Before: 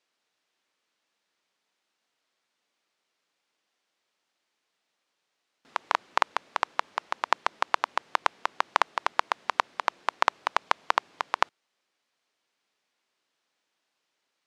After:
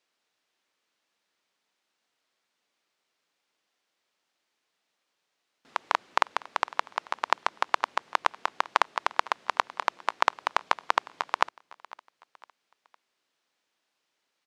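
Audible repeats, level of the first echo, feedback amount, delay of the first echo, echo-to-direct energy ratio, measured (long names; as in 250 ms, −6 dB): 2, −21.0 dB, 40%, 506 ms, −20.5 dB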